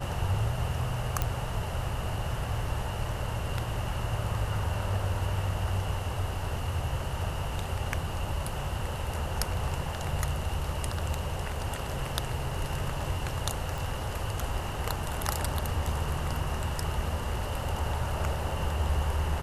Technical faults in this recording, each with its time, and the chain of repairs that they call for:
0:01.22: click −13 dBFS
0:13.78: click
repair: click removal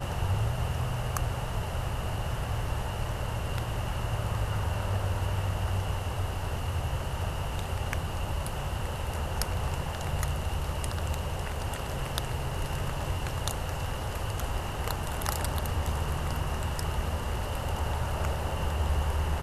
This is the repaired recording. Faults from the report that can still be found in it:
0:01.22: click

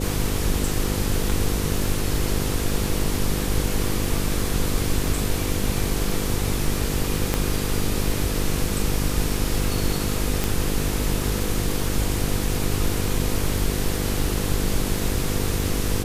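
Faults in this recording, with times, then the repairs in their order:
mains buzz 50 Hz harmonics 10 −27 dBFS
surface crackle 27 per second −31 dBFS
0:07.34: click −6 dBFS
0:10.44: click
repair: click removal
hum removal 50 Hz, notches 10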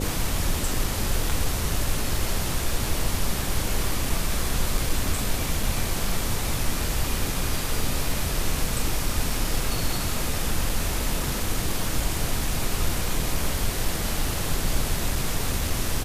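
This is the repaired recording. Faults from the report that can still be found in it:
0:07.34: click
0:10.44: click

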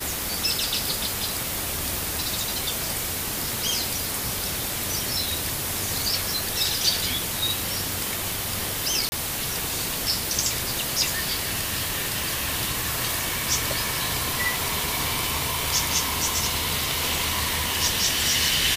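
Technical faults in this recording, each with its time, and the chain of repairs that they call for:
0:09.09–0:09.12: drop-out 30 ms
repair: repair the gap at 0:09.09, 30 ms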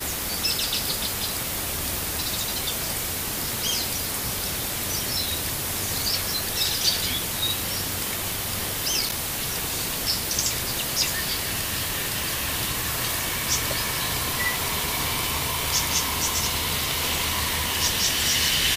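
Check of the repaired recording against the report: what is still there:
none of them is left

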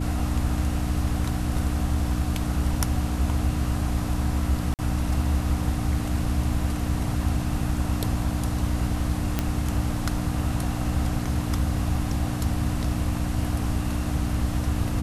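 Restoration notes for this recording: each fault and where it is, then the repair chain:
mains hum 60 Hz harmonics 5 −29 dBFS
0:04.74–0:04.79: drop-out 48 ms
0:09.39: click −9 dBFS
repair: click removal
hum removal 60 Hz, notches 5
repair the gap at 0:04.74, 48 ms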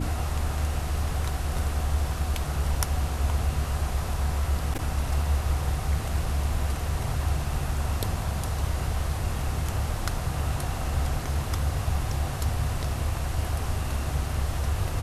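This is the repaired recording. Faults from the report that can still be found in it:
none of them is left

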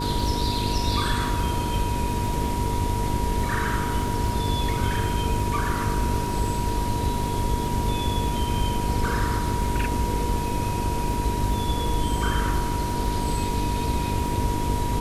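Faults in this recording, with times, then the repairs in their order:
mains buzz 50 Hz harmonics 9 −30 dBFS
surface crackle 49 per second −33 dBFS
whistle 960 Hz −29 dBFS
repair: click removal
hum removal 50 Hz, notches 9
notch filter 960 Hz, Q 30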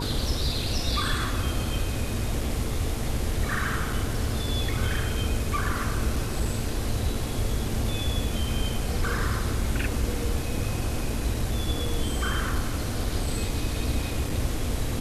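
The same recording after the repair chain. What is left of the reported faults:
none of them is left

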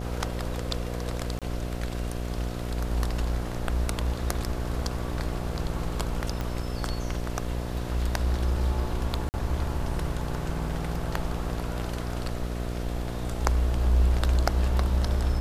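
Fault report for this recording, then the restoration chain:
mains buzz 60 Hz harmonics 12 −32 dBFS
0:01.39–0:01.42: drop-out 27 ms
0:06.41: click −17 dBFS
0:09.29–0:09.34: drop-out 49 ms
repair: click removal
hum removal 60 Hz, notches 12
repair the gap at 0:01.39, 27 ms
repair the gap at 0:09.29, 49 ms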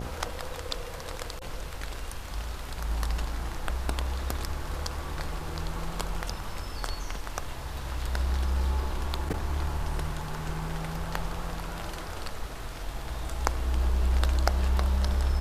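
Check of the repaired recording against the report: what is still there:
0:06.41: click

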